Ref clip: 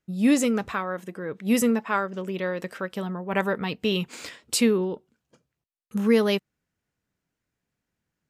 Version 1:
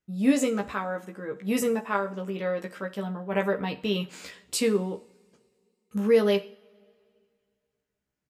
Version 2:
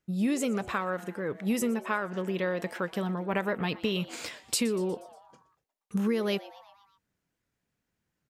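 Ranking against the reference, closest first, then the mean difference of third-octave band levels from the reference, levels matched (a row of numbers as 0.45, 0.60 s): 1, 2; 2.5, 4.5 dB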